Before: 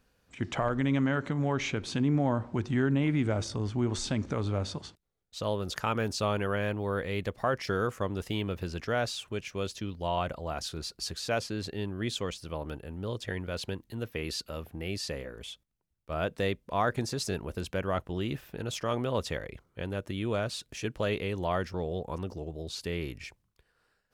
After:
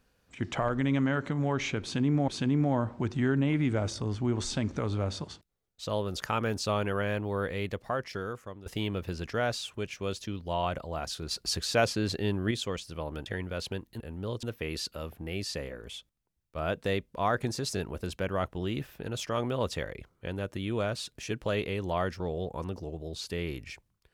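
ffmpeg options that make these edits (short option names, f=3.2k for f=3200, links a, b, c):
-filter_complex "[0:a]asplit=8[a][b][c][d][e][f][g][h];[a]atrim=end=2.282[i];[b]atrim=start=1.818:end=8.2,asetpts=PTS-STARTPTS,afade=t=out:st=5.242:d=1.14:silence=0.16788[j];[c]atrim=start=8.2:end=10.852,asetpts=PTS-STARTPTS,afade=t=in:d=0.004:c=hsin:silence=0.16788[k];[d]atrim=start=10.848:end=12.052,asetpts=PTS-STARTPTS,volume=5dB[l];[e]atrim=start=12.048:end=12.802[m];[f]atrim=start=13.228:end=13.972[n];[g]atrim=start=12.798:end=13.232[o];[h]atrim=start=13.968[p];[j][k]concat=n=2:v=0:a=1[q];[i][q]acrossfade=d=0.004:c1=hsin:c2=hsin[r];[r][l]acrossfade=d=0.004:c1=hsin:c2=hsin[s];[s][m]acrossfade=d=0.004:c1=hsin:c2=hsin[t];[t][n]acrossfade=d=0.004:c1=hsin:c2=hsin[u];[u][o]acrossfade=d=0.004:c1=hsin:c2=hsin[v];[v][p]acrossfade=d=0.004:c1=hsin:c2=hsin"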